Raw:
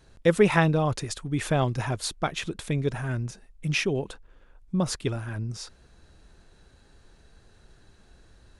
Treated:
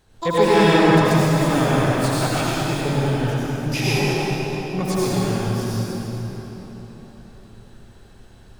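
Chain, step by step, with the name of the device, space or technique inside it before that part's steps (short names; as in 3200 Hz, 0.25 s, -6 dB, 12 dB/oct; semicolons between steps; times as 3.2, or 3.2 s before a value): shimmer-style reverb (harmoniser +12 st -5 dB; reverb RT60 4.3 s, pre-delay 75 ms, DRR -8.5 dB); gain -3 dB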